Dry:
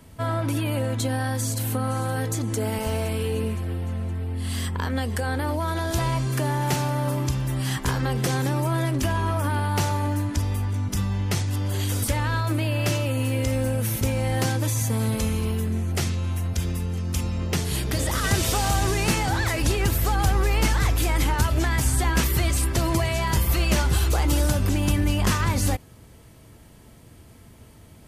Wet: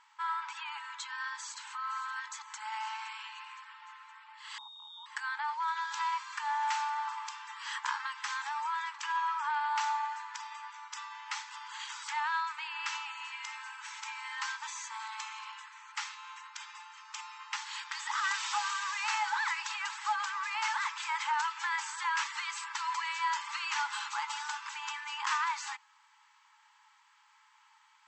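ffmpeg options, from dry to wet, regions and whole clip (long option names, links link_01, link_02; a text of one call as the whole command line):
ffmpeg -i in.wav -filter_complex "[0:a]asettb=1/sr,asplit=3[link_01][link_02][link_03];[link_01]atrim=end=4.584[link_04];[link_02]atrim=start=4.58:end=5.06,asetpts=PTS-STARTPTS,afade=type=in:duration=0.004:curve=qsin,afade=type=out:start_time=0.476:duration=0.004:curve=qsin,lowpass=frequency=3200:width_type=q:width=0.5098,lowpass=frequency=3200:width_type=q:width=0.6013,lowpass=frequency=3200:width_type=q:width=0.9,lowpass=frequency=3200:width_type=q:width=2.563,afreqshift=-3800,acrusher=bits=8:mix=0:aa=0.5,asuperstop=centerf=2200:order=8:qfactor=0.6[link_05];[link_03]atrim=start=5.056[link_06];[link_04][link_05]acrossfade=duration=0.004:curve1=hsin:curve2=qsin[link_07];[link_07][link_06]acrossfade=duration=0.004:curve1=qsin:curve2=hsin,highshelf=frequency=2700:gain=-12,afftfilt=real='re*between(b*sr/4096,820,8100)':imag='im*between(b*sr/4096,820,8100)':win_size=4096:overlap=0.75" out.wav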